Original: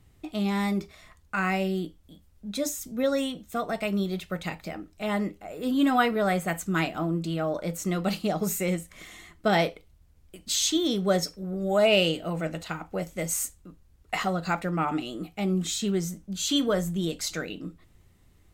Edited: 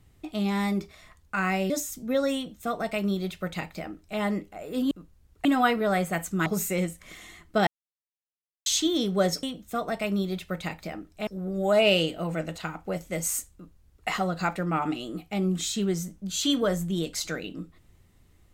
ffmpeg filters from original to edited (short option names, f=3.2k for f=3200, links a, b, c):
-filter_complex "[0:a]asplit=9[a][b][c][d][e][f][g][h][i];[a]atrim=end=1.702[j];[b]atrim=start=2.588:end=5.802[k];[c]atrim=start=13.598:end=14.142[l];[d]atrim=start=5.798:end=6.812[m];[e]atrim=start=8.358:end=9.57,asetpts=PTS-STARTPTS,afade=t=out:st=1.208:d=0.004:c=hsin[n];[f]atrim=start=9.57:end=10.56,asetpts=PTS-STARTPTS,volume=0[o];[g]atrim=start=10.56:end=11.332,asetpts=PTS-STARTPTS,afade=t=in:d=0.004:c=hsin[p];[h]atrim=start=3.238:end=5.082[q];[i]atrim=start=11.328[r];[j][k]acrossfade=d=0.004:c1=hsin:c2=hsin[s];[s][l]acrossfade=d=0.004:c1=hsin:c2=hsin[t];[t][m]acrossfade=d=0.004:c1=hsin:c2=hsin[u];[n][o][p]concat=n=3:v=0:a=1[v];[u][v]acrossfade=d=0.004:c1=hsin:c2=hsin[w];[w][q]acrossfade=d=0.004:c1=hsin:c2=hsin[x];[x][r]acrossfade=d=0.004:c1=hsin:c2=hsin"